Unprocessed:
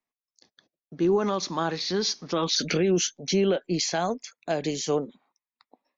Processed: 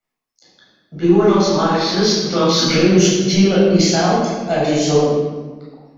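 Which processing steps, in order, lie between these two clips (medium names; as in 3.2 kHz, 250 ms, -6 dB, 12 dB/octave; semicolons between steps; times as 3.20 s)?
in parallel at -10 dB: saturation -22.5 dBFS, distortion -12 dB; on the sum: reverberation RT60 1.4 s, pre-delay 12 ms, DRR -8.5 dB; trim -2 dB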